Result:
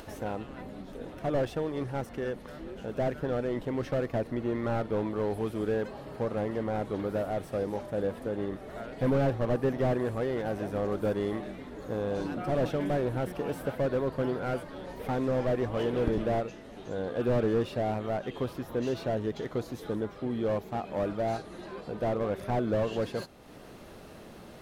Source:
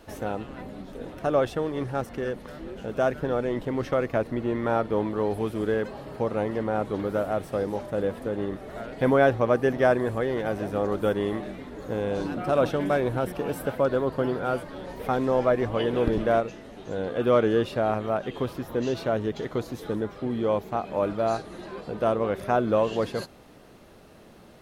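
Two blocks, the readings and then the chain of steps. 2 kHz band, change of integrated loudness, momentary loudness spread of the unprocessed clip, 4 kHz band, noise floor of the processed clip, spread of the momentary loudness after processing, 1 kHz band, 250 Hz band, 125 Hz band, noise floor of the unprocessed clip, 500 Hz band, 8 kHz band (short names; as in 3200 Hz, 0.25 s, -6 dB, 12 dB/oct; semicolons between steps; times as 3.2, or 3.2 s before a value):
-7.5 dB, -5.0 dB, 12 LU, -5.0 dB, -48 dBFS, 12 LU, -7.0 dB, -3.5 dB, -1.0 dB, -50 dBFS, -5.5 dB, n/a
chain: upward compressor, threshold -36 dBFS; slew limiter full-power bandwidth 47 Hz; gain -3.5 dB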